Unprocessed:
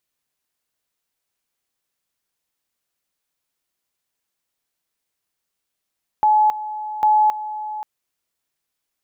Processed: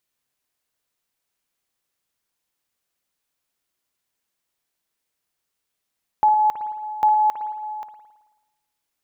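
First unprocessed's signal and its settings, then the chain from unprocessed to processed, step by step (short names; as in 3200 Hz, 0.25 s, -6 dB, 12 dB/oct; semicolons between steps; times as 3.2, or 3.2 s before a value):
two-level tone 853 Hz -11.5 dBFS, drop 14 dB, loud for 0.27 s, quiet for 0.53 s, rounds 2
spring tank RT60 1.1 s, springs 54 ms, chirp 65 ms, DRR 8 dB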